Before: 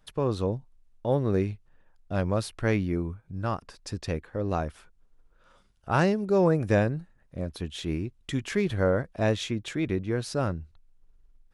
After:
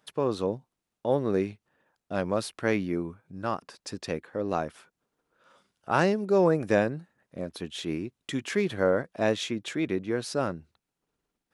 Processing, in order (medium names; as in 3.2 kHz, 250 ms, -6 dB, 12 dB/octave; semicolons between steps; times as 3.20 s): high-pass 200 Hz 12 dB/octave; trim +1 dB